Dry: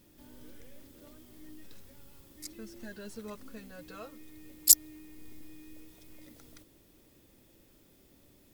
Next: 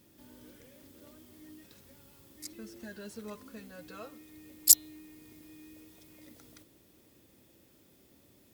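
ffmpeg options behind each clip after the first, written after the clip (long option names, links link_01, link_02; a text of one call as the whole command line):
ffmpeg -i in.wav -af "highpass=71,bandreject=frequency=147.2:width_type=h:width=4,bandreject=frequency=294.4:width_type=h:width=4,bandreject=frequency=441.6:width_type=h:width=4,bandreject=frequency=588.8:width_type=h:width=4,bandreject=frequency=736:width_type=h:width=4,bandreject=frequency=883.2:width_type=h:width=4,bandreject=frequency=1030.4:width_type=h:width=4,bandreject=frequency=1177.6:width_type=h:width=4,bandreject=frequency=1324.8:width_type=h:width=4,bandreject=frequency=1472:width_type=h:width=4,bandreject=frequency=1619.2:width_type=h:width=4,bandreject=frequency=1766.4:width_type=h:width=4,bandreject=frequency=1913.6:width_type=h:width=4,bandreject=frequency=2060.8:width_type=h:width=4,bandreject=frequency=2208:width_type=h:width=4,bandreject=frequency=2355.2:width_type=h:width=4,bandreject=frequency=2502.4:width_type=h:width=4,bandreject=frequency=2649.6:width_type=h:width=4,bandreject=frequency=2796.8:width_type=h:width=4,bandreject=frequency=2944:width_type=h:width=4,bandreject=frequency=3091.2:width_type=h:width=4,bandreject=frequency=3238.4:width_type=h:width=4,bandreject=frequency=3385.6:width_type=h:width=4,bandreject=frequency=3532.8:width_type=h:width=4,bandreject=frequency=3680:width_type=h:width=4,bandreject=frequency=3827.2:width_type=h:width=4,bandreject=frequency=3974.4:width_type=h:width=4,bandreject=frequency=4121.6:width_type=h:width=4" out.wav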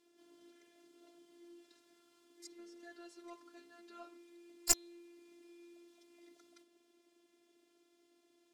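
ffmpeg -i in.wav -af "afftfilt=real='hypot(re,im)*cos(PI*b)':imag='0':win_size=512:overlap=0.75,highpass=220,lowpass=7200,aeval=exprs='0.473*(cos(1*acos(clip(val(0)/0.473,-1,1)))-cos(1*PI/2))+0.119*(cos(4*acos(clip(val(0)/0.473,-1,1)))-cos(4*PI/2))':channel_layout=same,volume=-3.5dB" out.wav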